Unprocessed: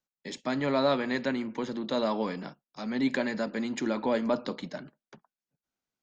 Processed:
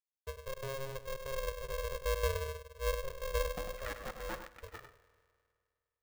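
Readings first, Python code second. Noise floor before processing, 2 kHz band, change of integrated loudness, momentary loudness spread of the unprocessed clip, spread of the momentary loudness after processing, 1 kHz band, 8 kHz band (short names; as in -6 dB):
under -85 dBFS, -7.0 dB, -9.0 dB, 13 LU, 12 LU, -8.5 dB, n/a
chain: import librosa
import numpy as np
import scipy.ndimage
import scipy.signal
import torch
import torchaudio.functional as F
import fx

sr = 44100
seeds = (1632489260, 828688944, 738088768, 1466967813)

y = fx.noise_reduce_blind(x, sr, reduce_db=7)
y = scipy.signal.sosfilt(scipy.signal.butter(4, 68.0, 'highpass', fs=sr, output='sos'), y)
y = fx.env_lowpass(y, sr, base_hz=330.0, full_db=-24.5)
y = fx.peak_eq(y, sr, hz=720.0, db=-13.0, octaves=1.9)
y = np.clip(10.0 ** (29.5 / 20.0) * y, -1.0, 1.0) / 10.0 ** (29.5 / 20.0)
y = fx.filter_sweep_lowpass(y, sr, from_hz=200.0, to_hz=1600.0, start_s=3.36, end_s=3.86, q=7.2)
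y = fx.step_gate(y, sr, bpm=168, pattern='.x.xxx.xxxx', floor_db=-60.0, edge_ms=4.5)
y = y + 10.0 ** (-9.0 / 20.0) * np.pad(y, (int(98 * sr / 1000.0), 0))[:len(y)]
y = fx.rev_spring(y, sr, rt60_s=2.2, pass_ms=(51,), chirp_ms=40, drr_db=15.5)
y = y * np.sign(np.sin(2.0 * np.pi * 270.0 * np.arange(len(y)) / sr))
y = y * librosa.db_to_amplitude(-7.0)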